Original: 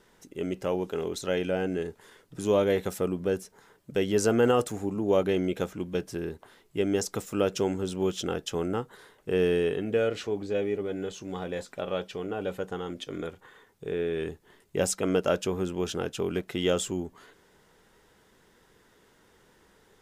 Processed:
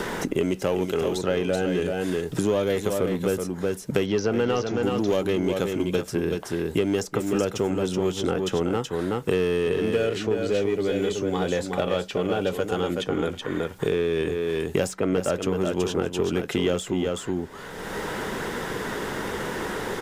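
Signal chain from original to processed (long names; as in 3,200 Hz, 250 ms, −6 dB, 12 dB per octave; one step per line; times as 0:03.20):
0:04.06–0:04.83: elliptic low-pass filter 5,800 Hz
in parallel at −4 dB: hard clipping −26.5 dBFS, distortion −8 dB
on the sum: single-tap delay 375 ms −7 dB
multiband upward and downward compressor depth 100%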